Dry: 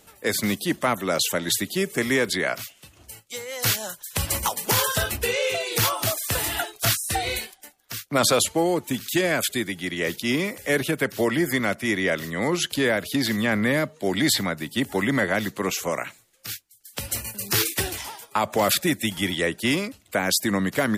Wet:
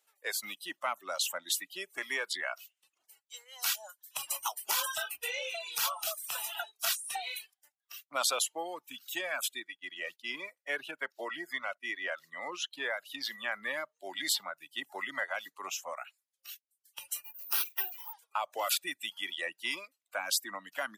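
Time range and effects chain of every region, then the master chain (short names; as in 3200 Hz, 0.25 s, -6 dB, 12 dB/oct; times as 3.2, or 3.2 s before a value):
9.6–12.91 expander -32 dBFS + high shelf 7500 Hz -8 dB
17.24–18.13 HPF 110 Hz + high shelf 2800 Hz -5.5 dB + careless resampling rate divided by 3×, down filtered, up zero stuff
whole clip: reverb removal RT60 0.6 s; HPF 800 Hz 12 dB/oct; spectral noise reduction 12 dB; gain -7.5 dB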